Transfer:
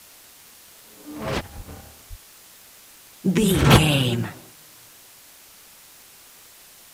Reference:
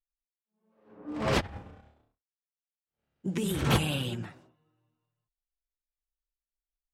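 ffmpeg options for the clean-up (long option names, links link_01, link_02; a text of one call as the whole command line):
ffmpeg -i in.wav -filter_complex "[0:a]adeclick=threshold=4,asplit=3[link_01][link_02][link_03];[link_01]afade=type=out:start_time=1.56:duration=0.02[link_04];[link_02]highpass=frequency=140:width=0.5412,highpass=frequency=140:width=1.3066,afade=type=in:start_time=1.56:duration=0.02,afade=type=out:start_time=1.68:duration=0.02[link_05];[link_03]afade=type=in:start_time=1.68:duration=0.02[link_06];[link_04][link_05][link_06]amix=inputs=3:normalize=0,asplit=3[link_07][link_08][link_09];[link_07]afade=type=out:start_time=2.09:duration=0.02[link_10];[link_08]highpass=frequency=140:width=0.5412,highpass=frequency=140:width=1.3066,afade=type=in:start_time=2.09:duration=0.02,afade=type=out:start_time=2.21:duration=0.02[link_11];[link_09]afade=type=in:start_time=2.21:duration=0.02[link_12];[link_10][link_11][link_12]amix=inputs=3:normalize=0,asplit=3[link_13][link_14][link_15];[link_13]afade=type=out:start_time=3.38:duration=0.02[link_16];[link_14]highpass=frequency=140:width=0.5412,highpass=frequency=140:width=1.3066,afade=type=in:start_time=3.38:duration=0.02,afade=type=out:start_time=3.5:duration=0.02[link_17];[link_15]afade=type=in:start_time=3.5:duration=0.02[link_18];[link_16][link_17][link_18]amix=inputs=3:normalize=0,afwtdn=0.0045,asetnsamples=nb_out_samples=441:pad=0,asendcmd='1.68 volume volume -11.5dB',volume=0dB" out.wav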